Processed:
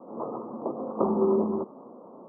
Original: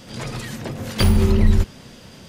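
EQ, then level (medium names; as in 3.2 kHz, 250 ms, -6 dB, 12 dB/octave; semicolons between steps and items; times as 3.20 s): high-pass 270 Hz 24 dB/octave; steep low-pass 1.2 kHz 96 dB/octave; +2.0 dB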